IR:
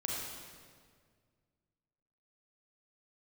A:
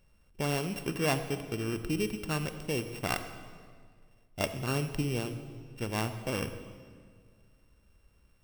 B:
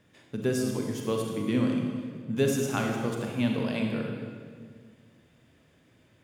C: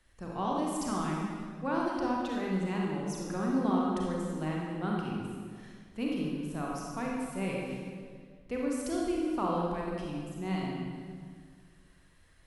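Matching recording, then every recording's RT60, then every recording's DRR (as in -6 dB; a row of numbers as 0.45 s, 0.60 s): C; 1.9 s, 1.9 s, 1.9 s; 9.0 dB, 1.0 dB, -3.0 dB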